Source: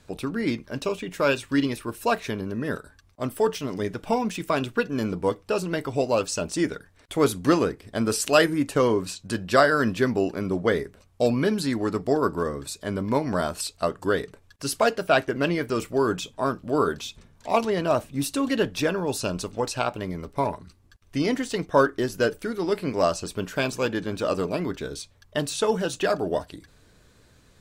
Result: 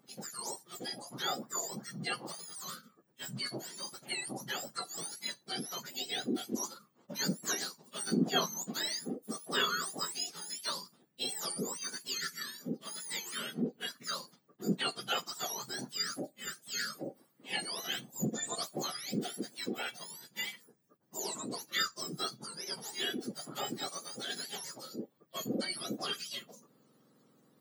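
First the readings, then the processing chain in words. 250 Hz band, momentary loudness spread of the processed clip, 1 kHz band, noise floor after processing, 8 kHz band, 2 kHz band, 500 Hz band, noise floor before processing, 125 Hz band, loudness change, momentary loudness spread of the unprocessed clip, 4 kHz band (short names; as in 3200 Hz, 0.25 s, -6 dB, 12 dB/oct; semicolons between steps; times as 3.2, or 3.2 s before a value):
-14.0 dB, 9 LU, -14.0 dB, -69 dBFS, -2.5 dB, -11.0 dB, -20.0 dB, -58 dBFS, -15.0 dB, -11.5 dB, 9 LU, -1.0 dB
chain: spectrum mirrored in octaves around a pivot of 1400 Hz; spectral gain 16.25–16.48, 870–6600 Hz -7 dB; gain -9 dB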